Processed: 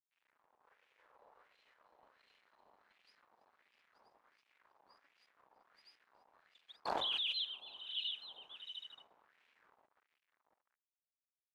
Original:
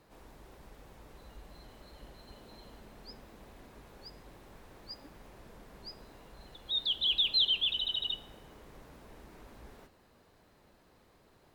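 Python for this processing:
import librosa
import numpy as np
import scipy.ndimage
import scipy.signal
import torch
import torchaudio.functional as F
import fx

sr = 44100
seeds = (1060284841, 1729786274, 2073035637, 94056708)

y = fx.graphic_eq(x, sr, hz=(125, 250, 500), db=(-4, -8, 12), at=(0.63, 1.47))
y = fx.spec_erase(y, sr, start_s=6.72, length_s=0.28, low_hz=1300.0, high_hz=4200.0)
y = fx.echo_multitap(y, sr, ms=(43, 275, 322, 645, 700, 879), db=(-8.5, -17.5, -8.0, -17.0, -18.5, -4.0))
y = np.sign(y) * np.maximum(np.abs(y) - 10.0 ** (-50.5 / 20.0), 0.0)
y = fx.filter_lfo_bandpass(y, sr, shape='sine', hz=1.4, low_hz=820.0, high_hz=2600.0, q=2.4)
y = fx.dynamic_eq(y, sr, hz=1900.0, q=1.6, threshold_db=-54.0, ratio=4.0, max_db=-5)
y = fx.env_flatten(y, sr, amount_pct=100, at=(6.85, 7.32), fade=0.02)
y = y * 10.0 ** (-3.5 / 20.0)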